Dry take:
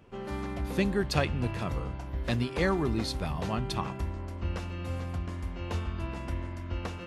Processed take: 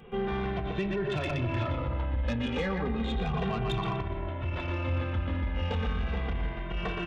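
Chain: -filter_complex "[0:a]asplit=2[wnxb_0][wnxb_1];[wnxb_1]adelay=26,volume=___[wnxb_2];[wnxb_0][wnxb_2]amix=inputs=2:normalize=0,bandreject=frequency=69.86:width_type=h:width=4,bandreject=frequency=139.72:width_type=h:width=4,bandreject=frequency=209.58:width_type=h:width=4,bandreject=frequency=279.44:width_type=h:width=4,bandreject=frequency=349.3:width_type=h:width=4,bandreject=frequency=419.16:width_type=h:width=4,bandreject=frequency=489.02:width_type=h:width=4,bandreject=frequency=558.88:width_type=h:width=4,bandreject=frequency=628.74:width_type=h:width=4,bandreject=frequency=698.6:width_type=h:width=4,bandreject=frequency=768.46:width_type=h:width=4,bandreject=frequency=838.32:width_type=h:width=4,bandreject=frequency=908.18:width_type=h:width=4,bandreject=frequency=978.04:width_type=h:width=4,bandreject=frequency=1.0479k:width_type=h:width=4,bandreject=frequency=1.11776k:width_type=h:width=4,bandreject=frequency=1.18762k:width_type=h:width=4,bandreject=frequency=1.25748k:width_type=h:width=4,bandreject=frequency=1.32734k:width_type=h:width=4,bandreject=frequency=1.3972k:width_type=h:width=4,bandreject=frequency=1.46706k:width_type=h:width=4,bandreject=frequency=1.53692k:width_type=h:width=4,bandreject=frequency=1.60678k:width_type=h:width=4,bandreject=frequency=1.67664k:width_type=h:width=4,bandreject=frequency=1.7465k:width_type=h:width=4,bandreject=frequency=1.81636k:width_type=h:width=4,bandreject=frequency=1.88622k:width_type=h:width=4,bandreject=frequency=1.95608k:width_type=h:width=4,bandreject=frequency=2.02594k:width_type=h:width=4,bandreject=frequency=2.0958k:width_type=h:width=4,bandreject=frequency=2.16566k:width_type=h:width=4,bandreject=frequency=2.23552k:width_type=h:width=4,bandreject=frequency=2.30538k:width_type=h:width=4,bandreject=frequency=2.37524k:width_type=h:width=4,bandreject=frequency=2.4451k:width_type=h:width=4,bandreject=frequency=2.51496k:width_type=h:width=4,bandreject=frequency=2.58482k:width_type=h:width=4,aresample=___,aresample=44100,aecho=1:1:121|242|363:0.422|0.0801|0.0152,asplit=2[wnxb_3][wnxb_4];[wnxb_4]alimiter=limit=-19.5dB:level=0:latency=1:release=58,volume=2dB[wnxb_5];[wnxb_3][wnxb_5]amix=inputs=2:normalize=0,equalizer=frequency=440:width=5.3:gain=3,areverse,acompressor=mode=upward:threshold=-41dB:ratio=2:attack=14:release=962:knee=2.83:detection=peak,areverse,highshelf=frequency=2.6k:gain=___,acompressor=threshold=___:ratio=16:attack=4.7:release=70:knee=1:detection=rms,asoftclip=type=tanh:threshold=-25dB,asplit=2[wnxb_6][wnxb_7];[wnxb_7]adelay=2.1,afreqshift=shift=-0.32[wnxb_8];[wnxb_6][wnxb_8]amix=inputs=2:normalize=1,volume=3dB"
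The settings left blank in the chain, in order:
-13dB, 8000, 3.5, -23dB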